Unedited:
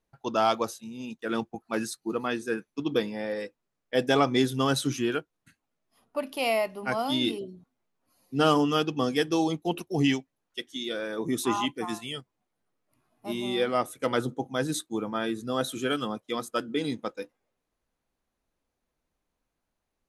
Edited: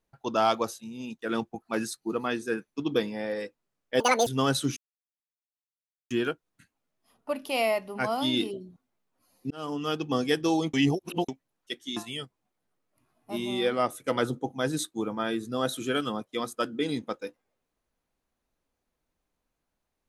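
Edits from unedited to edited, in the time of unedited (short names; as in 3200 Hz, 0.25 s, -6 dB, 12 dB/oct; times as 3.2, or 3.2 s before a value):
4–4.48 speed 181%
4.98 insert silence 1.34 s
8.38–9.04 fade in
9.61–10.16 reverse
10.84–11.92 cut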